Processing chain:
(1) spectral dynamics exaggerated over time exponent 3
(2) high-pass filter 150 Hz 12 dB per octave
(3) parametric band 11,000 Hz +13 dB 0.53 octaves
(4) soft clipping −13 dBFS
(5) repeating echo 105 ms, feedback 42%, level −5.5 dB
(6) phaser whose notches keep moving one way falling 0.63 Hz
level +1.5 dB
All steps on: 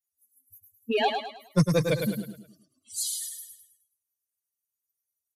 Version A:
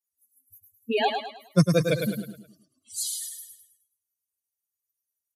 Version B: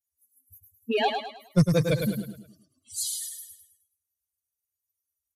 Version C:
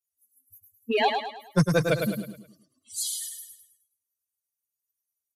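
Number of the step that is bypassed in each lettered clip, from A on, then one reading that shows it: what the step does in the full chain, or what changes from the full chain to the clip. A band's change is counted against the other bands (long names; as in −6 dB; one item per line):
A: 4, distortion level −16 dB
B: 2, 125 Hz band +2.5 dB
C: 6, 2 kHz band +3.5 dB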